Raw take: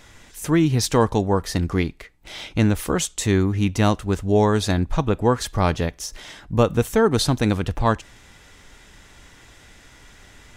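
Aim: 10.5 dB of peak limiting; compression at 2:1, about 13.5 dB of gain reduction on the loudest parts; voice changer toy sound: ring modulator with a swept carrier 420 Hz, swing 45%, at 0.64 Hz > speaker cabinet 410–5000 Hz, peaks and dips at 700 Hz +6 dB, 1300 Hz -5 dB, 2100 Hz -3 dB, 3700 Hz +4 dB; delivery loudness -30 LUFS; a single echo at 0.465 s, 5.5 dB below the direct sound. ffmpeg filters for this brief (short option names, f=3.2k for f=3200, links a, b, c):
-af "acompressor=threshold=-38dB:ratio=2,alimiter=level_in=3dB:limit=-24dB:level=0:latency=1,volume=-3dB,aecho=1:1:465:0.531,aeval=exprs='val(0)*sin(2*PI*420*n/s+420*0.45/0.64*sin(2*PI*0.64*n/s))':c=same,highpass=410,equalizer=f=700:t=q:w=4:g=6,equalizer=f=1.3k:t=q:w=4:g=-5,equalizer=f=2.1k:t=q:w=4:g=-3,equalizer=f=3.7k:t=q:w=4:g=4,lowpass=f=5k:w=0.5412,lowpass=f=5k:w=1.3066,volume=11.5dB"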